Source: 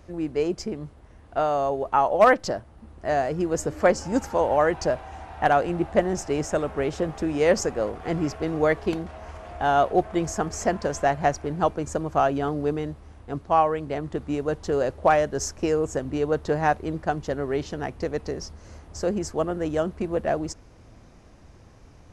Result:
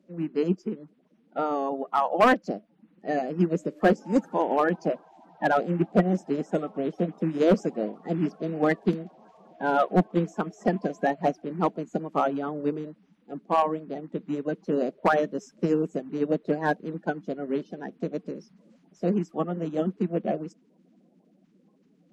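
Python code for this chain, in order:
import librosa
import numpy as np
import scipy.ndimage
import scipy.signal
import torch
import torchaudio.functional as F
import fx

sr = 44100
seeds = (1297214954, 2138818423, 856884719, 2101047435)

y = fx.spec_quant(x, sr, step_db=30)
y = scipy.signal.sosfilt(scipy.signal.ellip(4, 1.0, 40, 180.0, 'highpass', fs=sr, output='sos'), y)
y = fx.bass_treble(y, sr, bass_db=13, treble_db=-9)
y = np.clip(y, -10.0 ** (-12.0 / 20.0), 10.0 ** (-12.0 / 20.0))
y = fx.upward_expand(y, sr, threshold_db=-41.0, expansion=1.5)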